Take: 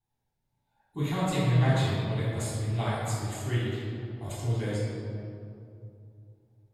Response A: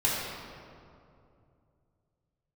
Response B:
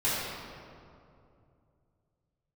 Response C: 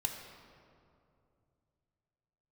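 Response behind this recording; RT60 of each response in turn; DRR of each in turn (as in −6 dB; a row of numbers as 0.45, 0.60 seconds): B; 2.6, 2.6, 2.6 seconds; −7.0, −11.5, 2.5 decibels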